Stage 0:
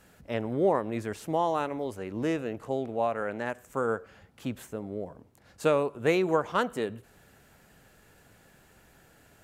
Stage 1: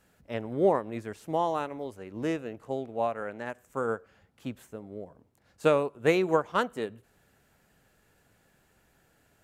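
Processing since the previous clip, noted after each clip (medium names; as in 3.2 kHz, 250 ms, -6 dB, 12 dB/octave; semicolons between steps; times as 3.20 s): upward expansion 1.5:1, over -39 dBFS; trim +2 dB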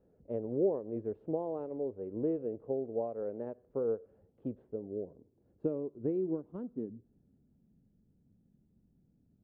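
peaking EQ 3.4 kHz +5.5 dB 0.99 oct; compression 2.5:1, threshold -32 dBFS, peak gain reduction 10 dB; low-pass sweep 460 Hz -> 220 Hz, 4.54–7.91 s; trim -3 dB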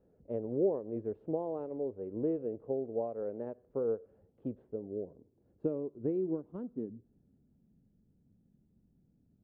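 no audible change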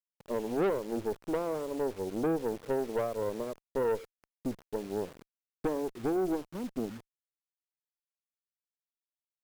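bit crusher 9-bit; valve stage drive 33 dB, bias 0.7; trim +8.5 dB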